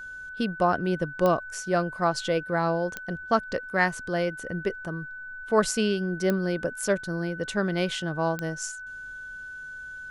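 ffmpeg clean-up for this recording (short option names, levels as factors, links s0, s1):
-af "adeclick=t=4,bandreject=f=1500:w=30"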